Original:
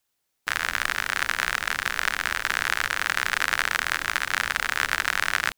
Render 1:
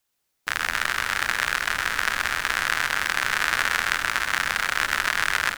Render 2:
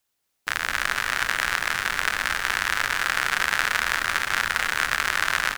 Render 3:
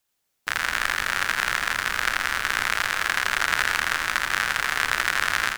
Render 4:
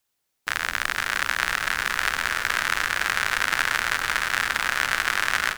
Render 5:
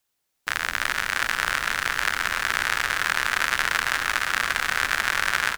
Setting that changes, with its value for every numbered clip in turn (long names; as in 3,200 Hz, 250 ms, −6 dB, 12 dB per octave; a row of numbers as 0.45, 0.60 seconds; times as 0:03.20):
echo with shifted repeats, delay time: 128, 226, 83, 510, 347 milliseconds